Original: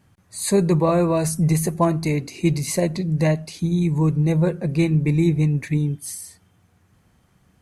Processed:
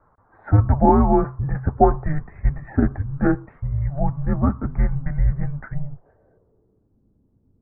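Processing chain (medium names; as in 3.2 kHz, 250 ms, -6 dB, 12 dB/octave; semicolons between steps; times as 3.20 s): mistuned SSB -290 Hz 220–2100 Hz; low-pass sweep 1.1 kHz -> 260 Hz, 5.51–7.03 s; trim +4 dB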